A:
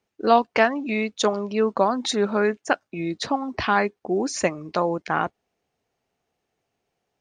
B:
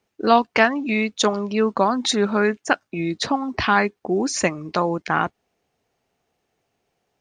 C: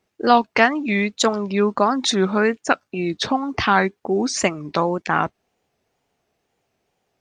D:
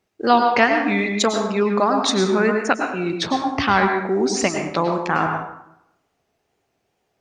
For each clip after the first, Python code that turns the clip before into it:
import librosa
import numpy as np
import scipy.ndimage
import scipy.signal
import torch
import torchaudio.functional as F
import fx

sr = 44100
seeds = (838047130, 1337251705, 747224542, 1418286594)

y1 = fx.dynamic_eq(x, sr, hz=560.0, q=1.1, threshold_db=-34.0, ratio=4.0, max_db=-5)
y1 = y1 * librosa.db_to_amplitude(4.5)
y2 = fx.wow_flutter(y1, sr, seeds[0], rate_hz=2.1, depth_cents=120.0)
y2 = y2 * librosa.db_to_amplitude(1.0)
y3 = fx.rev_plate(y2, sr, seeds[1], rt60_s=0.81, hf_ratio=0.6, predelay_ms=90, drr_db=3.5)
y3 = y3 * librosa.db_to_amplitude(-1.0)